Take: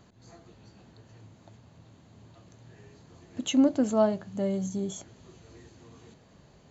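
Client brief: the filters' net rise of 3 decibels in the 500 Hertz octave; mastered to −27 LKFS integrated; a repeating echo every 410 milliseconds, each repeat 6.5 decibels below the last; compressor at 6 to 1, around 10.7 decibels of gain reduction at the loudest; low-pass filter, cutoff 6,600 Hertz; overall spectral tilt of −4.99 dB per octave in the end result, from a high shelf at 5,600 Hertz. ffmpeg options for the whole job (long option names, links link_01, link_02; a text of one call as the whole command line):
ffmpeg -i in.wav -af "lowpass=6600,equalizer=frequency=500:width_type=o:gain=4,highshelf=frequency=5600:gain=6,acompressor=threshold=-27dB:ratio=6,aecho=1:1:410|820|1230|1640|2050|2460:0.473|0.222|0.105|0.0491|0.0231|0.0109,volume=6dB" out.wav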